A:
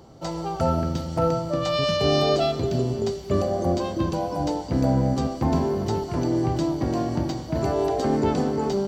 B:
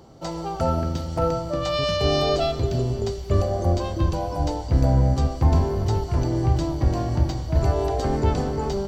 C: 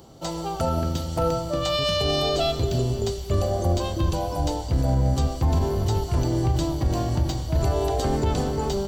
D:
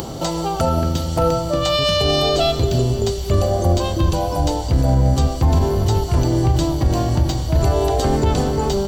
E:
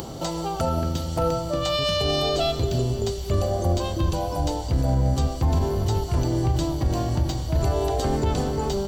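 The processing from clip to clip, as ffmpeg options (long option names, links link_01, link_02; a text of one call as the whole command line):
ffmpeg -i in.wav -af "asubboost=boost=10.5:cutoff=67" out.wav
ffmpeg -i in.wav -af "aexciter=amount=1.4:drive=7.4:freq=2900,alimiter=limit=-13.5dB:level=0:latency=1:release=40" out.wav
ffmpeg -i in.wav -af "acompressor=mode=upward:threshold=-23dB:ratio=2.5,volume=6dB" out.wav
ffmpeg -i in.wav -af "acrusher=bits=10:mix=0:aa=0.000001,volume=-6dB" out.wav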